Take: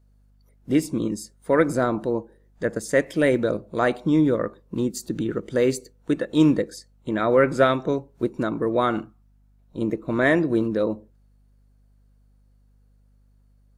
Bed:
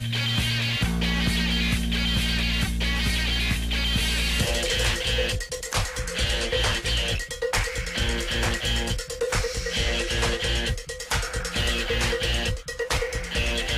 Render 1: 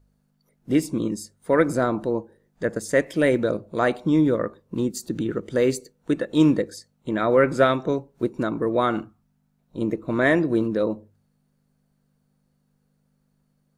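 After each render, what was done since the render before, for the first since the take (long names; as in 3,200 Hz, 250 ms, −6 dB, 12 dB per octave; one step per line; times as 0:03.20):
hum removal 50 Hz, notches 2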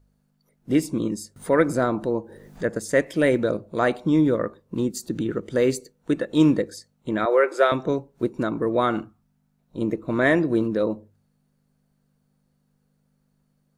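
0:01.36–0:02.78: upward compression, threshold −28 dBFS
0:07.25–0:07.72: elliptic high-pass filter 360 Hz, stop band 50 dB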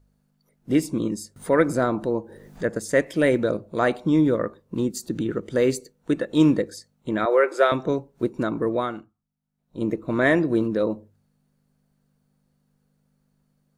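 0:08.69–0:09.85: duck −16 dB, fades 0.49 s quadratic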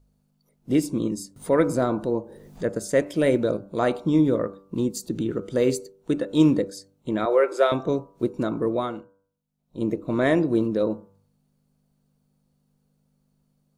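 parametric band 1,700 Hz −7 dB 0.76 octaves
hum removal 97.43 Hz, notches 16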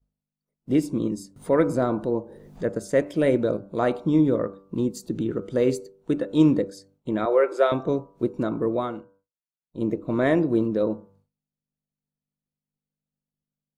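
downward expander −54 dBFS
high-shelf EQ 3,400 Hz −7.5 dB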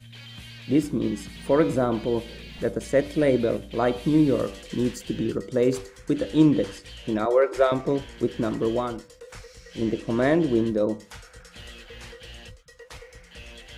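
mix in bed −18 dB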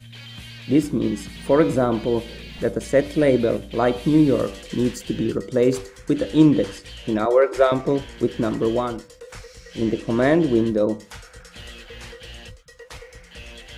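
level +3.5 dB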